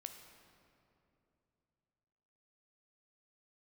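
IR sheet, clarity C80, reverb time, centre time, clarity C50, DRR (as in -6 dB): 8.0 dB, 2.9 s, 40 ms, 7.0 dB, 5.5 dB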